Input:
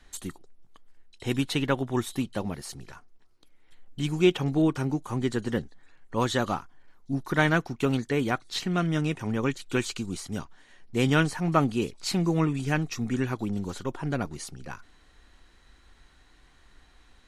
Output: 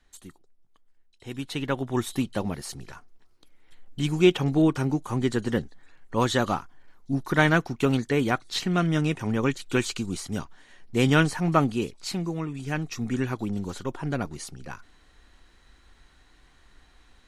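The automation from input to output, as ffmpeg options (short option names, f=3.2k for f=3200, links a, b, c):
-af "volume=10.5dB,afade=t=in:st=1.32:d=0.83:silence=0.266073,afade=t=out:st=11.41:d=1.03:silence=0.316228,afade=t=in:st=12.44:d=0.65:silence=0.398107"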